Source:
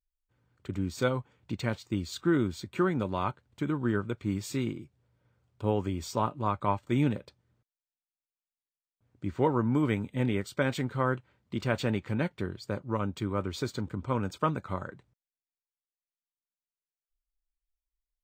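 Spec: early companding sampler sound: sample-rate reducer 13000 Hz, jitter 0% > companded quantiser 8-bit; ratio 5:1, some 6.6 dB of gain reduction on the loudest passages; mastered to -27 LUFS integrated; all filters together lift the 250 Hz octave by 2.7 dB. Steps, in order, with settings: bell 250 Hz +3.5 dB; compressor 5:1, threshold -27 dBFS; sample-rate reducer 13000 Hz, jitter 0%; companded quantiser 8-bit; gain +7 dB

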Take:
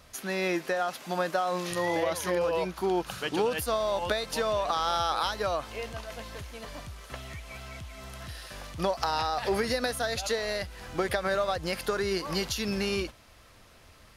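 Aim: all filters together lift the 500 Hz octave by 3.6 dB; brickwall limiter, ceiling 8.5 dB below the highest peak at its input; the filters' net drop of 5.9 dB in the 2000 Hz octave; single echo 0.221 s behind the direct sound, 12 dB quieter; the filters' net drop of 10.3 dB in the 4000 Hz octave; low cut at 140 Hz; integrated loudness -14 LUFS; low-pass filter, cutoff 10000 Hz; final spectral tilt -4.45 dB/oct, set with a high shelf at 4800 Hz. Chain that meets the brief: HPF 140 Hz; LPF 10000 Hz; bell 500 Hz +5 dB; bell 2000 Hz -5 dB; bell 4000 Hz -7.5 dB; high shelf 4800 Hz -8 dB; limiter -21.5 dBFS; echo 0.221 s -12 dB; gain +17 dB

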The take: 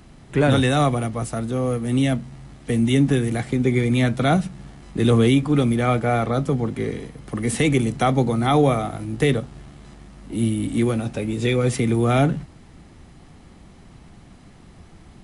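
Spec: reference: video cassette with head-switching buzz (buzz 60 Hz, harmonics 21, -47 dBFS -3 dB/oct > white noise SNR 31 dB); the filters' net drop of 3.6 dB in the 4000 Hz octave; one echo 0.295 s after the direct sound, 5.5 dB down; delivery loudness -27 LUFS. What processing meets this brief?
bell 4000 Hz -4.5 dB; echo 0.295 s -5.5 dB; buzz 60 Hz, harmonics 21, -47 dBFS -3 dB/oct; white noise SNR 31 dB; gain -6.5 dB

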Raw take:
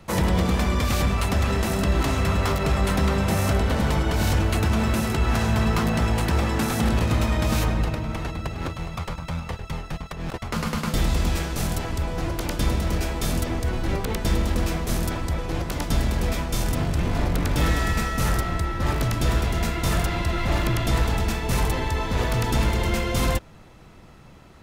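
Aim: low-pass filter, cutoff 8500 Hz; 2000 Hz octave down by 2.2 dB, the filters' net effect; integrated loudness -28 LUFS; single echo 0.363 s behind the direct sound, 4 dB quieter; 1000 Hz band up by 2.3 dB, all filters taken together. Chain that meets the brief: LPF 8500 Hz; bell 1000 Hz +4 dB; bell 2000 Hz -4 dB; echo 0.363 s -4 dB; gain -5 dB

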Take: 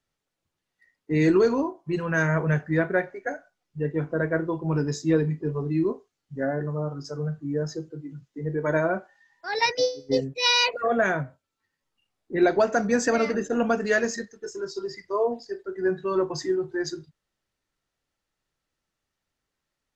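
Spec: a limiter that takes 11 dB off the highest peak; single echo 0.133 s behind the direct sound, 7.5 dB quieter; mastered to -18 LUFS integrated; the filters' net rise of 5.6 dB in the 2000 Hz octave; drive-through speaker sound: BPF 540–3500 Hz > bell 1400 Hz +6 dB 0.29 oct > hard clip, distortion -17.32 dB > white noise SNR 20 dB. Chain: bell 2000 Hz +5 dB; limiter -19.5 dBFS; BPF 540–3500 Hz; bell 1400 Hz +6 dB 0.29 oct; echo 0.133 s -7.5 dB; hard clip -24 dBFS; white noise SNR 20 dB; gain +14.5 dB

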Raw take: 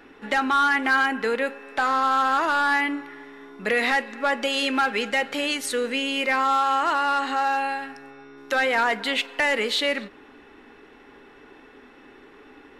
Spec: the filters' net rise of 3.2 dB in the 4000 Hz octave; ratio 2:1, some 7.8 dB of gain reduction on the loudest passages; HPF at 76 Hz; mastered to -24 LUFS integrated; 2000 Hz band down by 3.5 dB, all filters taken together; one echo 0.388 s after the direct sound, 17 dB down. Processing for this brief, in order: HPF 76 Hz; bell 2000 Hz -6 dB; bell 4000 Hz +6.5 dB; compressor 2:1, threshold -32 dBFS; echo 0.388 s -17 dB; gain +6.5 dB

